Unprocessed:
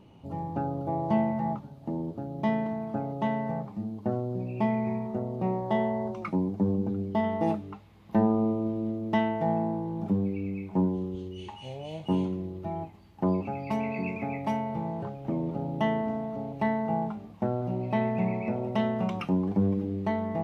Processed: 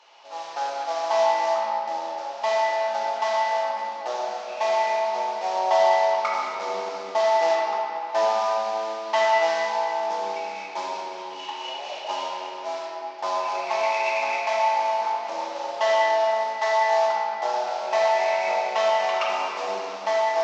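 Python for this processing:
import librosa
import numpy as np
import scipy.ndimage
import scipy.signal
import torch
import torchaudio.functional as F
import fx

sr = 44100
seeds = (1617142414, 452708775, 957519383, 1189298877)

y = fx.cvsd(x, sr, bps=32000)
y = scipy.signal.sosfilt(scipy.signal.butter(4, 730.0, 'highpass', fs=sr, output='sos'), y)
y = fx.room_shoebox(y, sr, seeds[0], volume_m3=190.0, walls='hard', distance_m=0.87)
y = y * librosa.db_to_amplitude(7.5)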